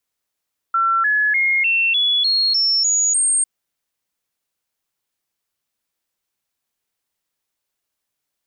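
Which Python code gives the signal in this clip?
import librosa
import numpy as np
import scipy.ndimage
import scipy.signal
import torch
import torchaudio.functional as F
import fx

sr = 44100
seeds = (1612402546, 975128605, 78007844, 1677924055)

y = fx.stepped_sweep(sr, from_hz=1350.0, direction='up', per_octave=3, tones=9, dwell_s=0.3, gap_s=0.0, level_db=-14.0)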